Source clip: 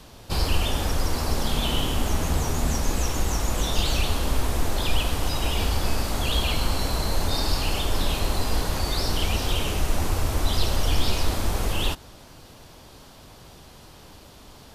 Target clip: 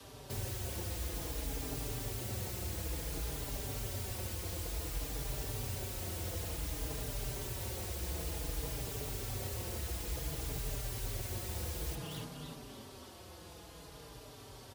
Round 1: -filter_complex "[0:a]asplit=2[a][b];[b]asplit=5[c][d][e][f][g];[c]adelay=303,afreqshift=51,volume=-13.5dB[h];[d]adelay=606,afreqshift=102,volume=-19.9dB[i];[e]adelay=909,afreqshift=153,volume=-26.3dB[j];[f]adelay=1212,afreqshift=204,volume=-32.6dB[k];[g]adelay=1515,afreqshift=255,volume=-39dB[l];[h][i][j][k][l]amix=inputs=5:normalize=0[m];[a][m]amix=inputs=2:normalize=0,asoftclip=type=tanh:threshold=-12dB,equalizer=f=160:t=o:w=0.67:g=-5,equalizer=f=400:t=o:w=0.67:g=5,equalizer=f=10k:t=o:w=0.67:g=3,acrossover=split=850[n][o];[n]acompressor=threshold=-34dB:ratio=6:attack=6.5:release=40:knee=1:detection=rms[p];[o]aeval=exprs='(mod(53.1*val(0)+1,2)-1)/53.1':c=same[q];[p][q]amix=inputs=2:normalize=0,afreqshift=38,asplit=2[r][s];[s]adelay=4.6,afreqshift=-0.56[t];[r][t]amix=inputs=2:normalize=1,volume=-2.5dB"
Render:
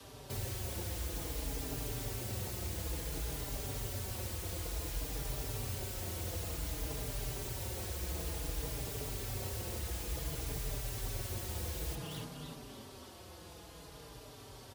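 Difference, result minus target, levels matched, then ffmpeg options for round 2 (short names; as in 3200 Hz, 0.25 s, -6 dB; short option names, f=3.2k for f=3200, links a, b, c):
soft clip: distortion +20 dB
-filter_complex "[0:a]asplit=2[a][b];[b]asplit=5[c][d][e][f][g];[c]adelay=303,afreqshift=51,volume=-13.5dB[h];[d]adelay=606,afreqshift=102,volume=-19.9dB[i];[e]adelay=909,afreqshift=153,volume=-26.3dB[j];[f]adelay=1212,afreqshift=204,volume=-32.6dB[k];[g]adelay=1515,afreqshift=255,volume=-39dB[l];[h][i][j][k][l]amix=inputs=5:normalize=0[m];[a][m]amix=inputs=2:normalize=0,asoftclip=type=tanh:threshold=-1dB,equalizer=f=160:t=o:w=0.67:g=-5,equalizer=f=400:t=o:w=0.67:g=5,equalizer=f=10k:t=o:w=0.67:g=3,acrossover=split=850[n][o];[n]acompressor=threshold=-34dB:ratio=6:attack=6.5:release=40:knee=1:detection=rms[p];[o]aeval=exprs='(mod(53.1*val(0)+1,2)-1)/53.1':c=same[q];[p][q]amix=inputs=2:normalize=0,afreqshift=38,asplit=2[r][s];[s]adelay=4.6,afreqshift=-0.56[t];[r][t]amix=inputs=2:normalize=1,volume=-2.5dB"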